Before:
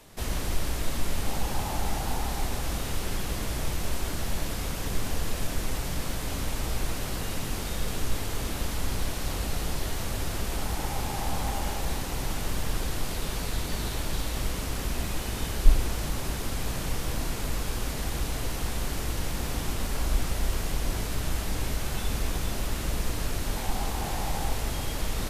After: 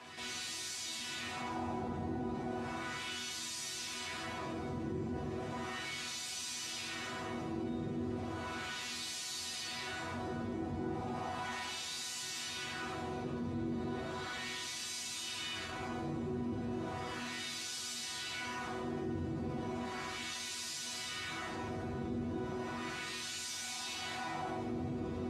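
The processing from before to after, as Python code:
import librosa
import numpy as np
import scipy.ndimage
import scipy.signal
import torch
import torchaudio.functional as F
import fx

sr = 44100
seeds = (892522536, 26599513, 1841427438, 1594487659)

p1 = fx.peak_eq(x, sr, hz=110.0, db=11.0, octaves=1.6)
p2 = p1 + fx.room_early_taps(p1, sr, ms=(46, 67), db=(-3.0, -5.0), dry=0)
p3 = 10.0 ** (-7.0 / 20.0) * np.tanh(p2 / 10.0 ** (-7.0 / 20.0))
p4 = scipy.signal.sosfilt(scipy.signal.butter(2, 9000.0, 'lowpass', fs=sr, output='sos'), p3)
p5 = fx.bass_treble(p4, sr, bass_db=8, treble_db=2)
p6 = fx.resonator_bank(p5, sr, root=59, chord='sus4', decay_s=0.23)
p7 = fx.filter_lfo_bandpass(p6, sr, shape='sine', hz=0.35, low_hz=350.0, high_hz=5500.0, q=0.94)
p8 = scipy.signal.sosfilt(scipy.signal.butter(4, 80.0, 'highpass', fs=sr, output='sos'), p7)
p9 = fx.doubler(p8, sr, ms=13.0, db=-9.0)
p10 = fx.env_flatten(p9, sr, amount_pct=50)
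y = p10 * 10.0 ** (8.0 / 20.0)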